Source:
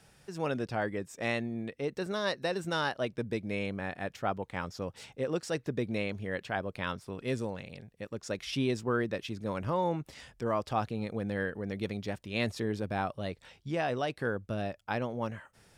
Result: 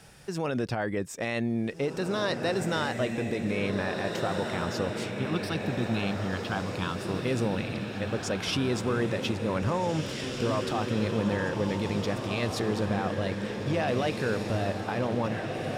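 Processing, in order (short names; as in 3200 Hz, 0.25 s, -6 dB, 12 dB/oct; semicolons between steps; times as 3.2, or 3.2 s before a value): 5.11–6.99 fixed phaser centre 2000 Hz, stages 6; limiter -28.5 dBFS, peak gain reduction 11 dB; diffused feedback echo 1.847 s, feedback 52%, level -4 dB; gain +8 dB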